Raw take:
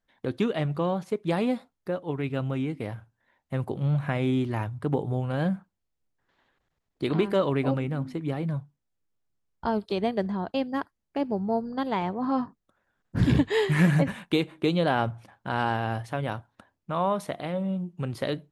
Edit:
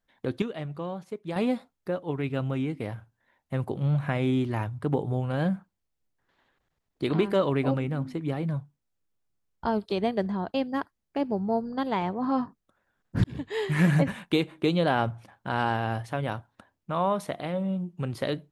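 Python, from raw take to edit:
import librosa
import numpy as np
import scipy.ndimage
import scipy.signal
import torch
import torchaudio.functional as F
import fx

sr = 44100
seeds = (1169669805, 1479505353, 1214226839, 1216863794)

y = fx.edit(x, sr, fx.clip_gain(start_s=0.42, length_s=0.94, db=-7.5),
    fx.fade_in_span(start_s=13.24, length_s=0.68), tone=tone)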